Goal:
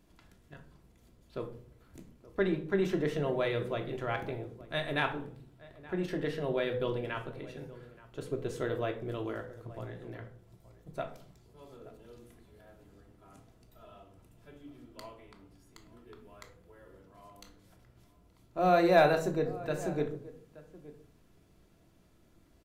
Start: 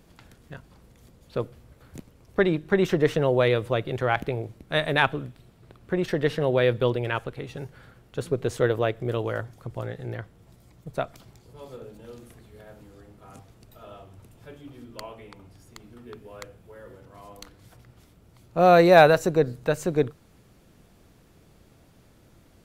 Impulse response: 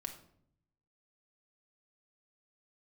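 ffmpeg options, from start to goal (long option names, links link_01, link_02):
-filter_complex "[0:a]asplit=2[link_01][link_02];[link_02]adelay=874.6,volume=-18dB,highshelf=frequency=4000:gain=-19.7[link_03];[link_01][link_03]amix=inputs=2:normalize=0[link_04];[1:a]atrim=start_sample=2205,asetrate=61740,aresample=44100[link_05];[link_04][link_05]afir=irnorm=-1:irlink=0,volume=-4dB"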